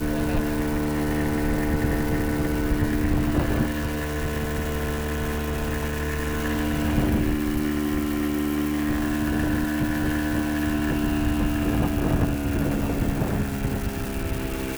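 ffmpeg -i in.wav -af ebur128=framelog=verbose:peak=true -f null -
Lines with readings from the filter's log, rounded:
Integrated loudness:
  I:         -25.2 LUFS
  Threshold: -35.2 LUFS
Loudness range:
  LRA:         1.8 LU
  Threshold: -45.1 LUFS
  LRA low:   -26.2 LUFS
  LRA high:  -24.4 LUFS
True peak:
  Peak:       -9.1 dBFS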